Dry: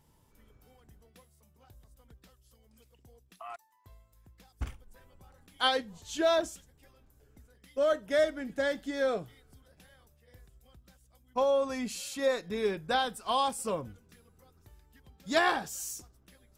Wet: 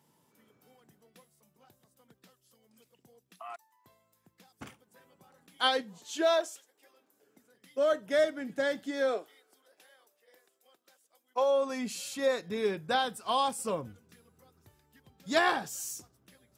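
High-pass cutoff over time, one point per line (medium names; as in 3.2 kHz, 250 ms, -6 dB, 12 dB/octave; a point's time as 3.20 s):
high-pass 24 dB/octave
5.89 s 150 Hz
6.47 s 440 Hz
8.07 s 120 Hz
8.84 s 120 Hz
9.24 s 360 Hz
11.39 s 360 Hz
12.14 s 94 Hz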